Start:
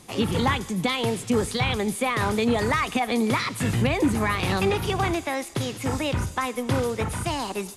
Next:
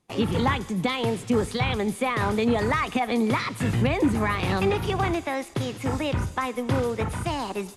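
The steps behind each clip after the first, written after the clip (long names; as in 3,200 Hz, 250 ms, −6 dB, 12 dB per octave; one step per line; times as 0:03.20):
noise gate with hold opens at −27 dBFS
high-shelf EQ 3,900 Hz −7.5 dB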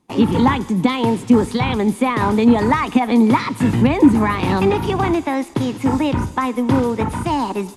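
hollow resonant body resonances 260/910 Hz, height 10 dB, ringing for 20 ms
level +3 dB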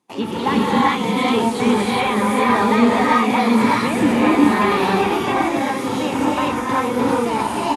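high-pass filter 460 Hz 6 dB per octave
single-tap delay 1,119 ms −14 dB
reverb whose tail is shaped and stops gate 430 ms rising, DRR −6.5 dB
level −3.5 dB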